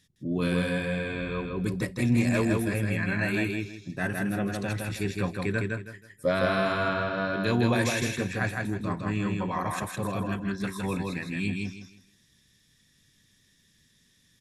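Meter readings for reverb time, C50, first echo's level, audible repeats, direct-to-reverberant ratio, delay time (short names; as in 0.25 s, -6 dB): none, none, -3.0 dB, 3, none, 0.16 s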